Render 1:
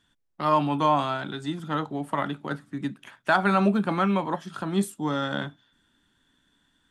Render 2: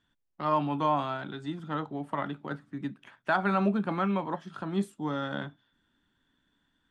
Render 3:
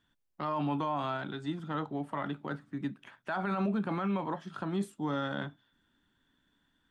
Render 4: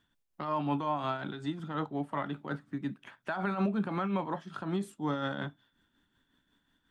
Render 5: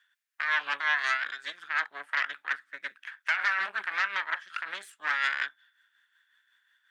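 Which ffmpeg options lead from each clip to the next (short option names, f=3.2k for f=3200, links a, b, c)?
-af "aemphasis=mode=reproduction:type=50fm,volume=-5dB"
-af "alimiter=limit=-24dB:level=0:latency=1:release=26"
-af "tremolo=f=5.5:d=0.49,volume=2.5dB"
-af "aeval=exprs='0.0891*(cos(1*acos(clip(val(0)/0.0891,-1,1)))-cos(1*PI/2))+0.0398*(cos(4*acos(clip(val(0)/0.0891,-1,1)))-cos(4*PI/2))':c=same,highpass=f=1.7k:t=q:w=3.4,volume=1.5dB"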